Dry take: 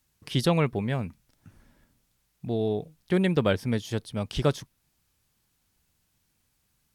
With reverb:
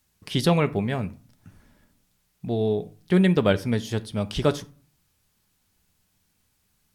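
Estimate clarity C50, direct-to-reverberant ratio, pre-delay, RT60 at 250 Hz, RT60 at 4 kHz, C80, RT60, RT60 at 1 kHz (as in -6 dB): 19.5 dB, 11.0 dB, 5 ms, 0.60 s, 0.25 s, 25.0 dB, 0.40 s, 0.45 s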